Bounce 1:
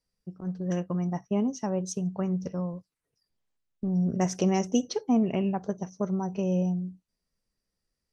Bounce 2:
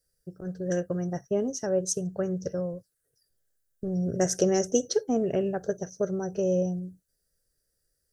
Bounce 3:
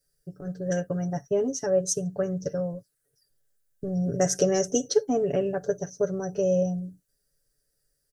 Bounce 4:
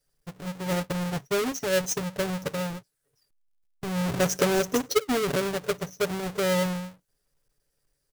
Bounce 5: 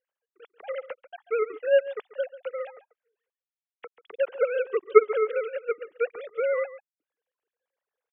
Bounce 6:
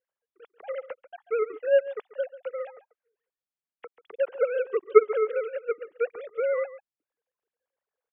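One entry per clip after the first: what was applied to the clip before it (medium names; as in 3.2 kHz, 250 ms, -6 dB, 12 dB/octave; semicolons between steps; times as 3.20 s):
FFT filter 140 Hz 0 dB, 210 Hz -11 dB, 390 Hz +1 dB, 560 Hz +3 dB, 1 kHz -16 dB, 1.6 kHz +5 dB, 2.3 kHz -13 dB, 3.4 kHz -5 dB, 10 kHz +10 dB; trim +4 dB
comb 7 ms, depth 71%
square wave that keeps the level; trim -4.5 dB
formants replaced by sine waves; delay 139 ms -16 dB
treble shelf 2.9 kHz -10.5 dB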